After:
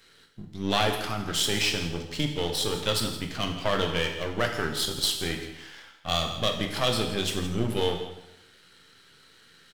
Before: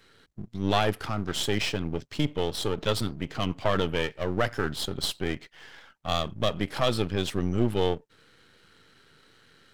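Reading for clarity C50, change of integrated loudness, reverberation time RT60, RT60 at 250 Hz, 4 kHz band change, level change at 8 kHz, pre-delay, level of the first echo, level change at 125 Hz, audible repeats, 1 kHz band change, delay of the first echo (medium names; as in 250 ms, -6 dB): 6.5 dB, +1.0 dB, 0.85 s, 0.85 s, +5.0 dB, +6.5 dB, 7 ms, -14.5 dB, -1.5 dB, 1, 0.0 dB, 166 ms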